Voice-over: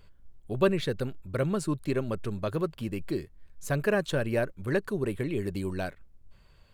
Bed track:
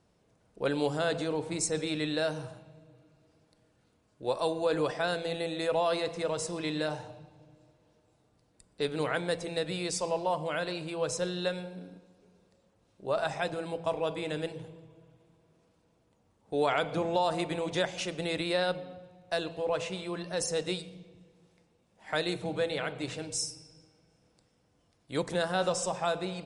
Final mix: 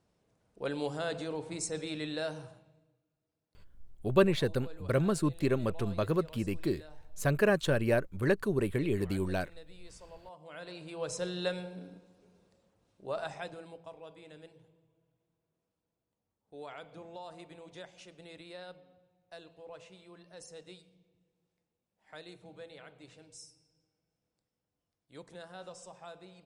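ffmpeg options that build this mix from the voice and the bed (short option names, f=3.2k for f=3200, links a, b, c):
-filter_complex "[0:a]adelay=3550,volume=0dB[a];[1:a]volume=14dB,afade=t=out:st=2.34:d=0.68:silence=0.16788,afade=t=in:st=10.39:d=1.11:silence=0.105925,afade=t=out:st=12.38:d=1.53:silence=0.149624[b];[a][b]amix=inputs=2:normalize=0"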